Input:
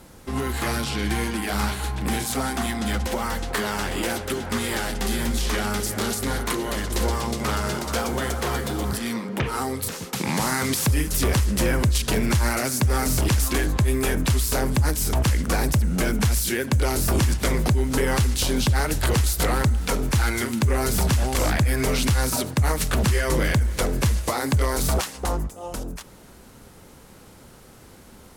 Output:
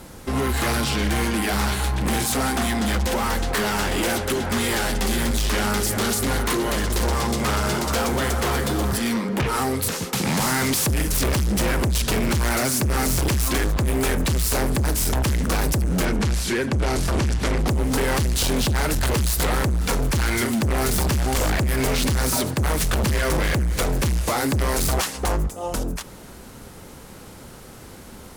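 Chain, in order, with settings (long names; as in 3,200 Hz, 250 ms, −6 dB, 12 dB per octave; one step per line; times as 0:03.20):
hard clipping −25 dBFS, distortion −7 dB
0:16.05–0:17.68: high-frequency loss of the air 53 metres
level +6 dB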